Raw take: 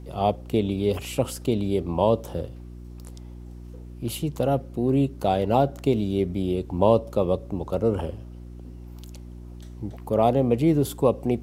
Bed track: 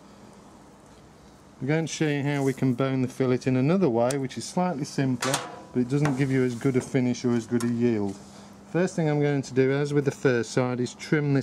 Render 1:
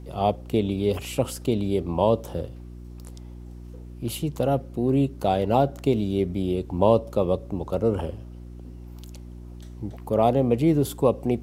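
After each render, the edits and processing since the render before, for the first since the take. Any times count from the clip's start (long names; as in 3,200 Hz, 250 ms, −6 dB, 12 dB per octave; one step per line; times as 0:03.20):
no processing that can be heard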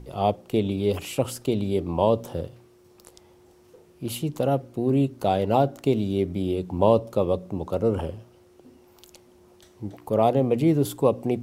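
hum removal 60 Hz, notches 5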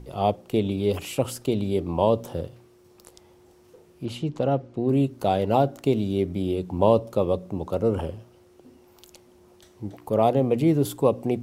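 0:04.05–0:04.89: high-frequency loss of the air 97 metres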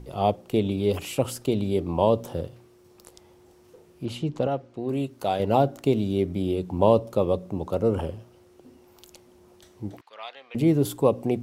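0:04.47–0:05.40: low-shelf EQ 450 Hz −8.5 dB
0:10.01–0:10.55: Chebyshev band-pass filter 1,600–4,200 Hz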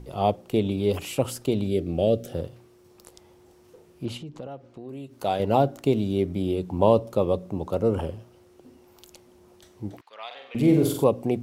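0:01.67–0:02.33: Butterworth band-reject 970 Hz, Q 1.4
0:04.17–0:05.17: downward compressor 2.5 to 1, threshold −40 dBFS
0:10.26–0:11.04: flutter between parallel walls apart 7.9 metres, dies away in 0.61 s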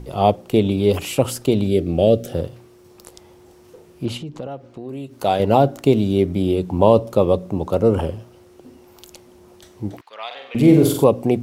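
level +7 dB
brickwall limiter −2 dBFS, peak gain reduction 2 dB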